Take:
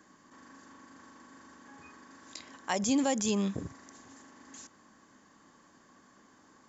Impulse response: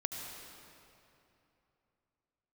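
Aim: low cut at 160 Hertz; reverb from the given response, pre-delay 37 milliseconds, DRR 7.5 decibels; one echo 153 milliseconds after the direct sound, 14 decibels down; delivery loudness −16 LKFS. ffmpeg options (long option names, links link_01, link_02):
-filter_complex "[0:a]highpass=160,aecho=1:1:153:0.2,asplit=2[link_01][link_02];[1:a]atrim=start_sample=2205,adelay=37[link_03];[link_02][link_03]afir=irnorm=-1:irlink=0,volume=-9dB[link_04];[link_01][link_04]amix=inputs=2:normalize=0,volume=15.5dB"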